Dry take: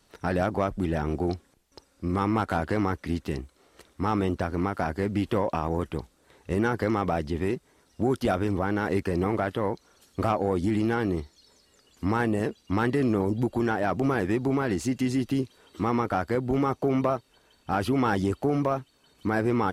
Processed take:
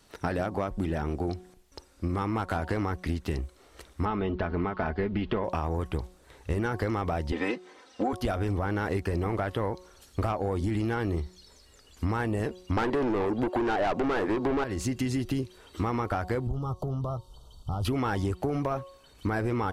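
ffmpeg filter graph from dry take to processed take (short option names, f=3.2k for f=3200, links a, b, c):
-filter_complex "[0:a]asettb=1/sr,asplit=3[a][b][c];[a]atrim=end=4.054[d];[b]atrim=start=4.05:end=5.44,asetpts=PTS-STARTPTS,afade=t=in:d=0.004:c=qsin,afade=t=out:st=1.386:d=0.004:c=qsin,lowpass=f=3.8k:w=0.5412,lowpass=f=3.8k:w=1.3066,equalizer=f=340:t=o:w=0.23:g=5,aecho=1:1:4.7:0.51,atrim=end_sample=61299[e];[c]atrim=start=5.436[f];[d][e]acrossfade=d=0.004:c1=hsin:c2=qsin[g];[g][f]acrossfade=d=0.004:c1=qsin:c2=hsin,asettb=1/sr,asplit=3[h][i][j];[h]atrim=end=7.324[k];[i]atrim=start=7.32:end=8.13,asetpts=PTS-STARTPTS,afade=t=in:d=0.004:c=qsin,afade=t=out:st=0.806:d=0.004:c=qsin,aecho=1:1:3.9:0.76,atrim=end_sample=35721,acontrast=62,highpass=370,lowpass=4.7k[l];[j]atrim=start=8.126[m];[k][l]acrossfade=d=0.004:c1=hsin:c2=qsin[n];[n][m]acrossfade=d=0.004:c1=qsin:c2=hsin,asettb=1/sr,asplit=3[o][p][q];[o]atrim=end=12.774[r];[p]atrim=start=12.77:end=14.64,asetpts=PTS-STARTPTS,afade=t=in:d=0.004:c=qsin,afade=t=out:st=1.866:d=0.004:c=qsin,highpass=220,tiltshelf=f=1.2k:g=8,asplit=2[s][t];[t]highpass=f=720:p=1,volume=23dB,asoftclip=type=tanh:threshold=-9dB[u];[s][u]amix=inputs=2:normalize=0,lowpass=f=5k:p=1,volume=-6dB[v];[q]atrim=start=14.636[w];[r][v]acrossfade=d=0.004:c1=hsin:c2=qsin[x];[x][w]acrossfade=d=0.004:c1=qsin:c2=hsin,asettb=1/sr,asplit=3[y][z][aa];[y]atrim=end=16.474[ab];[z]atrim=start=16.47:end=17.85,asetpts=PTS-STARTPTS,afade=t=in:d=0.004:c=qsin,afade=t=out:st=1.376:d=0.004:c=qsin,lowshelf=f=200:t=q:w=1.5:g=8.5,acompressor=threshold=-35dB:ratio=3:attack=3.2:release=140:knee=1:detection=peak,asuperstop=centerf=2000:order=12:qfactor=1.2[ac];[aa]atrim=start=17.846[ad];[ab][ac]acrossfade=d=0.004:c1=hsin:c2=qsin[ae];[ae][ad]acrossfade=d=0.004:c1=qsin:c2=hsin,bandreject=f=182.7:t=h:w=4,bandreject=f=365.4:t=h:w=4,bandreject=f=548.1:t=h:w=4,bandreject=f=730.8:t=h:w=4,bandreject=f=913.5:t=h:w=4,bandreject=f=1.0962k:t=h:w=4,asubboost=boost=4:cutoff=84,acompressor=threshold=-29dB:ratio=6,volume=3.5dB"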